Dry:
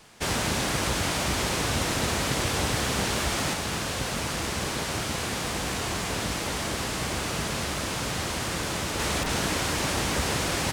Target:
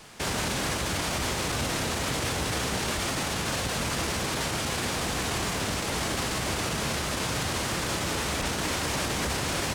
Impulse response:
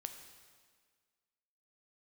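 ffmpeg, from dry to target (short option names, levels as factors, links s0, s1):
-filter_complex "[0:a]asplit=2[s0][s1];[1:a]atrim=start_sample=2205,asetrate=57330,aresample=44100[s2];[s1][s2]afir=irnorm=-1:irlink=0,volume=2[s3];[s0][s3]amix=inputs=2:normalize=0,atempo=1.1,alimiter=limit=0.119:level=0:latency=1:release=61,volume=0.841"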